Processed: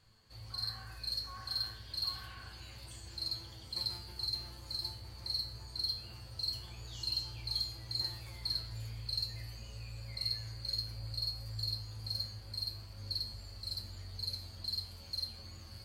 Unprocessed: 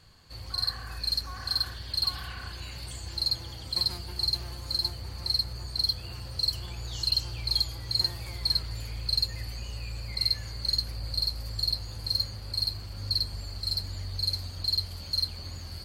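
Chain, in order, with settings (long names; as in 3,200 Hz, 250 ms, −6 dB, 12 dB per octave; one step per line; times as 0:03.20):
tuned comb filter 110 Hz, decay 0.46 s, harmonics all, mix 80%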